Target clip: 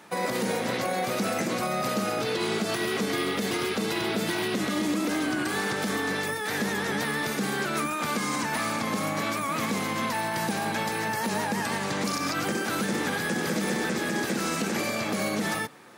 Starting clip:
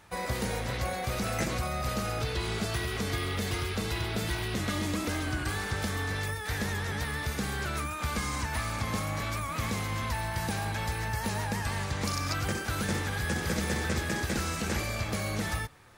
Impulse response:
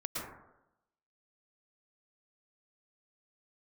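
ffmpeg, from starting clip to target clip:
-af "highpass=frequency=200:width=0.5412,highpass=frequency=200:width=1.3066,lowshelf=frequency=420:gain=8,alimiter=limit=-24dB:level=0:latency=1:release=66,volume=5.5dB"

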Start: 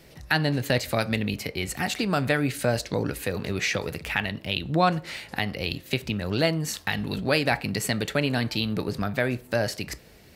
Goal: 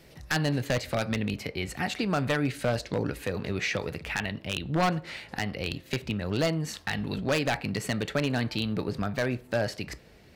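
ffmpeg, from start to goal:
ffmpeg -i in.wav -af "asetnsamples=nb_out_samples=441:pad=0,asendcmd='0.64 highshelf g -11.5',highshelf=frequency=6900:gain=-2.5,aeval=exprs='0.168*(abs(mod(val(0)/0.168+3,4)-2)-1)':channel_layout=same,volume=-2dB" out.wav

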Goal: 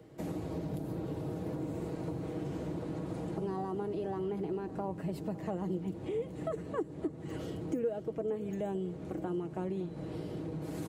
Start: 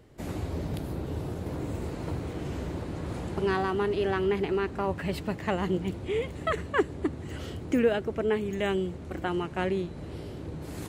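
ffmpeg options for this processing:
ffmpeg -i in.wav -filter_complex "[0:a]highpass=60,aecho=1:1:6.3:0.46,acrossover=split=140|860|5300[link_01][link_02][link_03][link_04];[link_02]acontrast=56[link_05];[link_03]alimiter=level_in=17dB:limit=-24dB:level=0:latency=1:release=194,volume=-17dB[link_06];[link_01][link_05][link_06][link_04]amix=inputs=4:normalize=0,acompressor=threshold=-33dB:ratio=2.5,aecho=1:1:563:0.126,volume=-3.5dB" out.wav

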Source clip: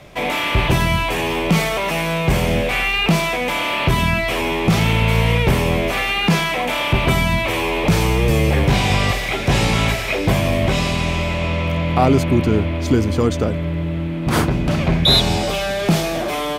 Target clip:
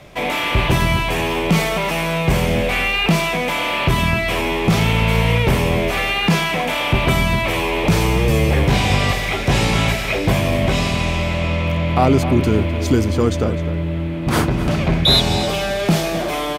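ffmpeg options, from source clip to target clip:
ffmpeg -i in.wav -filter_complex "[0:a]asettb=1/sr,asplit=3[link_01][link_02][link_03];[link_01]atrim=end=12.434[link_04];[link_02]atrim=start=12.43:end=13.08,asetpts=PTS-STARTPTS,afade=type=in:duration=0.004:curve=qsin,afade=type=out:start_time=0.646:duration=0.004:curve=qsin,highshelf=frequency=5600:gain=6[link_05];[link_03]atrim=start=13.076[link_06];[link_04][link_05]acrossfade=duration=0.004:curve1=hsin:curve2=qsin[link_07];[link_07][link_06]acrossfade=duration=0.004:curve1=qsin:curve2=hsin,asplit=2[link_08][link_09];[link_09]adelay=256.6,volume=-12dB,highshelf=frequency=4000:gain=-5.77[link_10];[link_08][link_10]amix=inputs=2:normalize=0" out.wav

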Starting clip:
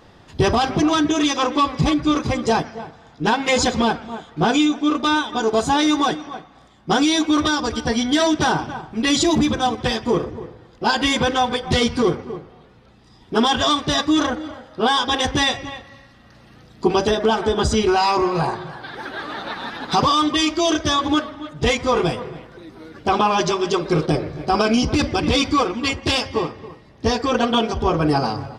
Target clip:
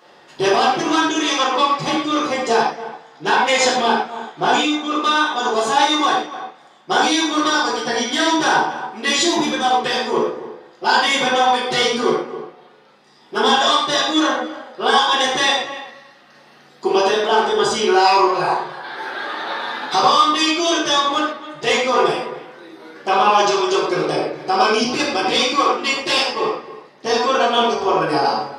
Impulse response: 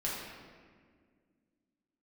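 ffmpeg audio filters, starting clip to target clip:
-filter_complex "[0:a]highpass=420[link_01];[1:a]atrim=start_sample=2205,atrim=end_sample=6174[link_02];[link_01][link_02]afir=irnorm=-1:irlink=0,volume=1dB"

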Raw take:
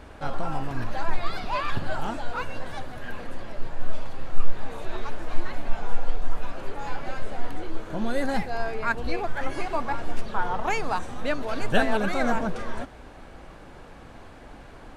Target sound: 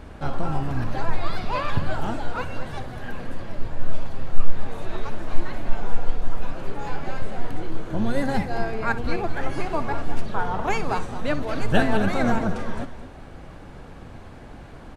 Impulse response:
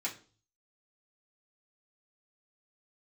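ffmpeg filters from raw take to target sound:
-filter_complex "[0:a]equalizer=frequency=120:width_type=o:width=2.2:gain=7,asplit=2[link_01][link_02];[link_02]asetrate=22050,aresample=44100,atempo=2,volume=-8dB[link_03];[link_01][link_03]amix=inputs=2:normalize=0,asplit=2[link_04][link_05];[link_05]aecho=0:1:61|217:0.178|0.224[link_06];[link_04][link_06]amix=inputs=2:normalize=0"

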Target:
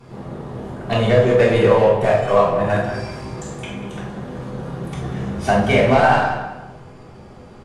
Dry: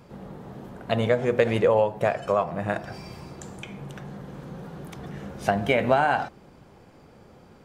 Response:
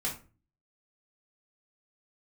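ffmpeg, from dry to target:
-filter_complex "[0:a]asplit=2[link_01][link_02];[link_02]aeval=exprs='0.0708*(abs(mod(val(0)/0.0708+3,4)-2)-1)':channel_layout=same,volume=-10.5dB[link_03];[link_01][link_03]amix=inputs=2:normalize=0,asplit=2[link_04][link_05];[link_05]adelay=190,lowpass=frequency=3800:poles=1,volume=-9.5dB,asplit=2[link_06][link_07];[link_07]adelay=190,lowpass=frequency=3800:poles=1,volume=0.3,asplit=2[link_08][link_09];[link_09]adelay=190,lowpass=frequency=3800:poles=1,volume=0.3[link_10];[link_04][link_06][link_08][link_10]amix=inputs=4:normalize=0[link_11];[1:a]atrim=start_sample=2205,asetrate=23373,aresample=44100[link_12];[link_11][link_12]afir=irnorm=-1:irlink=0,volume=-2.5dB"

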